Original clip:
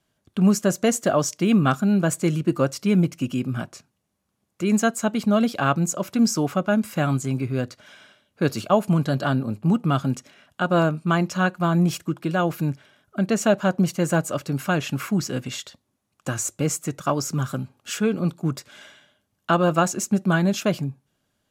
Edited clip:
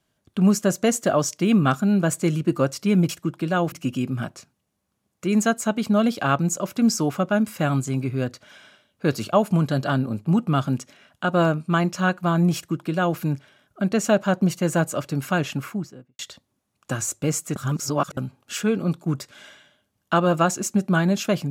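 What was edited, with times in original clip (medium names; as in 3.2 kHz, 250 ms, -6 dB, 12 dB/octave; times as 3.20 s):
11.92–12.55 s: copy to 3.09 s
14.76–15.56 s: studio fade out
16.93–17.54 s: reverse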